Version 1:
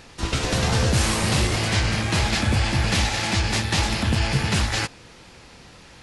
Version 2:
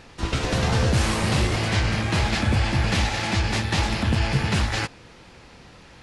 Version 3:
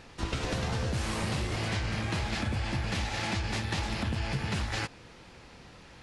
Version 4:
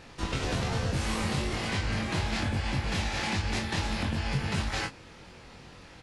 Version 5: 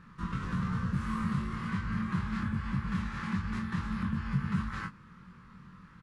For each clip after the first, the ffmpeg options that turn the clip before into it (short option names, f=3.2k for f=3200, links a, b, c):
-af "highshelf=f=4.7k:g=-8"
-af "acompressor=threshold=-24dB:ratio=6,volume=-4dB"
-af "aecho=1:1:22|41:0.668|0.266"
-af "firequalizer=gain_entry='entry(100,0);entry(190,12);entry(280,-5);entry(720,-19);entry(1100,8);entry(2400,-9);entry(5100,-14);entry(11000,-11)':delay=0.05:min_phase=1,volume=-5.5dB"